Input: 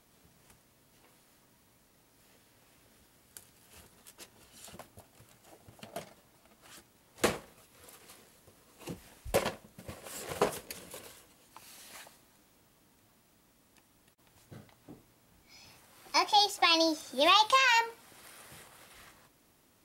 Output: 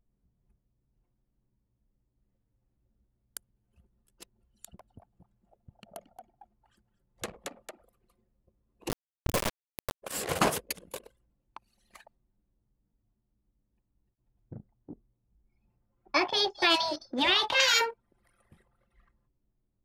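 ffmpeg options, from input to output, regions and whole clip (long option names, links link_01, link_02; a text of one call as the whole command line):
ffmpeg -i in.wav -filter_complex "[0:a]asettb=1/sr,asplit=3[link_01][link_02][link_03];[link_01]atrim=end=4.654[link_04];[link_02]atrim=start=4.65:end=7.9,asetpts=PTS-STARTPTS,afade=type=in:duration=0.004:curve=qsin,afade=type=out:start_time=3.246:duration=0.004:curve=qsin,equalizer=frequency=330:width_type=o:width=0.64:gain=-4.5,asplit=6[link_05][link_06][link_07][link_08][link_09][link_10];[link_06]adelay=225,afreqshift=71,volume=-5.5dB[link_11];[link_07]adelay=450,afreqshift=142,volume=-13.7dB[link_12];[link_08]adelay=675,afreqshift=213,volume=-21.9dB[link_13];[link_09]adelay=900,afreqshift=284,volume=-30dB[link_14];[link_10]adelay=1125,afreqshift=355,volume=-38.2dB[link_15];[link_05][link_11][link_12][link_13][link_14][link_15]amix=inputs=6:normalize=0,atrim=end_sample=143325,acompressor=threshold=-47dB:ratio=3:attack=3.2:release=140:knee=1:detection=peak[link_16];[link_03]atrim=start=7.896[link_17];[link_04][link_16]acrossfade=duration=0.004:curve1=hsin:curve2=qsin[link_18];[link_18][link_17]acrossfade=duration=0.004:curve1=qsin:curve2=hsin,asettb=1/sr,asplit=3[link_19][link_20][link_21];[link_19]atrim=end=8.894[link_22];[link_20]atrim=start=8.89:end=10.03,asetpts=PTS-STARTPTS,afade=type=in:duration=0.004:curve=qsin,afade=type=out:start_time=1.136:duration=0.004:curve=qsin,lowshelf=frequency=220:gain=6,acompressor=threshold=-34dB:ratio=2:attack=3.2:release=140:knee=1:detection=peak,acrusher=bits=3:dc=4:mix=0:aa=0.000001[link_23];[link_21]atrim=start=10.026[link_24];[link_22][link_23]acrossfade=duration=0.004:curve1=hsin:curve2=qsin[link_25];[link_25][link_24]acrossfade=duration=0.004:curve1=qsin:curve2=hsin,asettb=1/sr,asplit=3[link_26][link_27][link_28];[link_26]atrim=end=14.544[link_29];[link_27]atrim=start=14.54:end=17.6,asetpts=PTS-STARTPTS,afade=type=in:duration=0.004:curve=qsin,afade=type=out:start_time=3.056:duration=0.004:curve=qsin,aemphasis=mode=reproduction:type=75kf,acrossover=split=5800[link_30][link_31];[link_31]adelay=210[link_32];[link_30][link_32]amix=inputs=2:normalize=0,atrim=end_sample=134946[link_33];[link_28]atrim=start=17.596[link_34];[link_29][link_33]acrossfade=duration=0.004:curve1=hsin:curve2=qsin[link_35];[link_35][link_34]acrossfade=duration=0.004:curve1=qsin:curve2=hsin,anlmdn=0.0631,afftfilt=real='re*lt(hypot(re,im),0.2)':imag='im*lt(hypot(re,im),0.2)':win_size=1024:overlap=0.75,volume=8.5dB" out.wav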